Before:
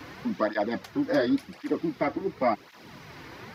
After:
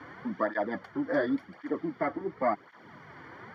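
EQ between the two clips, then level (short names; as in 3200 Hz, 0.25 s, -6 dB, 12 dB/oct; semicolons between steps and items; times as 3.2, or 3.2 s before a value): polynomial smoothing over 41 samples; HPF 84 Hz; tilt shelf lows -5 dB, about 1300 Hz; 0.0 dB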